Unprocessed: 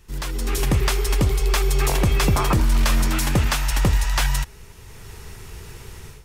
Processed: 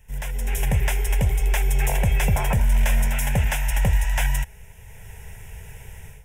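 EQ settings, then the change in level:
phaser with its sweep stopped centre 1,200 Hz, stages 6
0.0 dB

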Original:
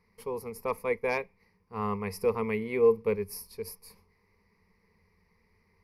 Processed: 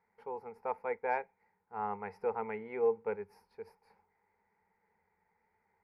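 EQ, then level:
pair of resonant band-passes 1,100 Hz, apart 0.77 octaves
spectral tilt −2.5 dB per octave
+6.5 dB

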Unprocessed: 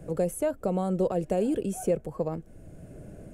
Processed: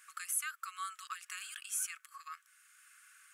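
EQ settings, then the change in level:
linear-phase brick-wall high-pass 1,100 Hz
+5.0 dB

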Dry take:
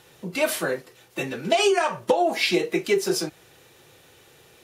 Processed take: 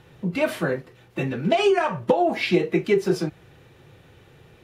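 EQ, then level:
bass and treble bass +11 dB, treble −13 dB
0.0 dB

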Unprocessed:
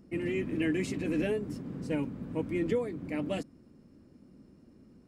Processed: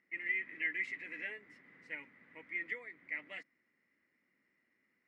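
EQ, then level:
resonant band-pass 2,000 Hz, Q 17
+14.0 dB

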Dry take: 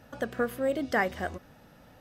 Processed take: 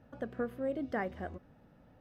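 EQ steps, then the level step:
drawn EQ curve 280 Hz 0 dB, 2,500 Hz −9 dB, 7,400 Hz −18 dB
−4.5 dB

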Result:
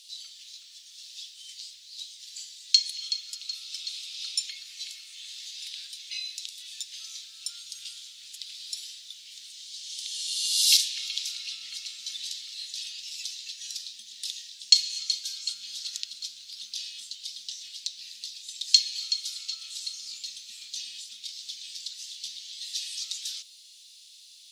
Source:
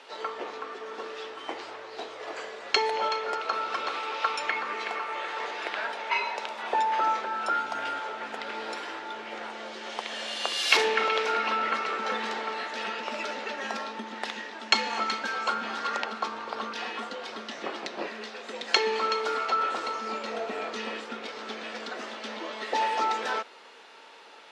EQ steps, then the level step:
elliptic band-stop filter 110–3,800 Hz, stop band 80 dB
RIAA equalisation recording
high-shelf EQ 4,000 Hz +6 dB
−2.0 dB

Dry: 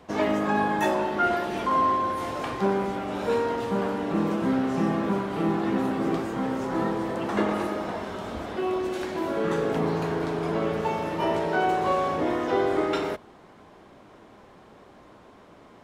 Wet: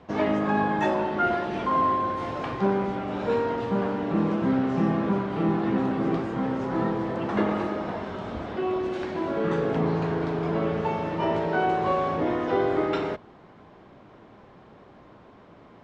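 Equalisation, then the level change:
high-frequency loss of the air 130 metres
parametric band 130 Hz +4.5 dB 1.1 octaves
0.0 dB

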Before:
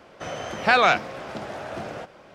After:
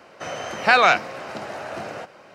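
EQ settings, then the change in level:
high-pass filter 79 Hz
low-shelf EQ 440 Hz −6 dB
notch filter 3,400 Hz, Q 9.7
+3.5 dB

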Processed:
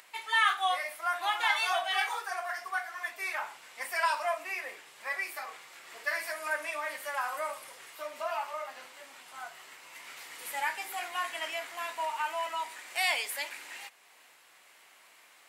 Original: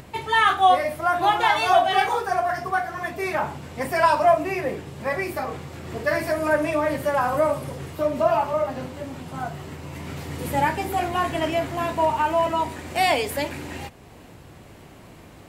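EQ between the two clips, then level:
high-pass filter 1,300 Hz 12 dB per octave
parametric band 2,100 Hz +2.5 dB 0.26 octaves
parametric band 9,700 Hz +2.5 dB 0.56 octaves
−4.5 dB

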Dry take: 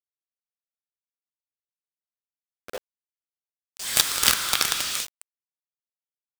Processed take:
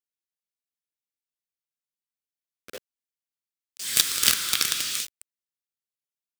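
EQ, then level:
low-shelf EQ 78 Hz −10 dB
parametric band 820 Hz −13.5 dB 1.2 octaves
0.0 dB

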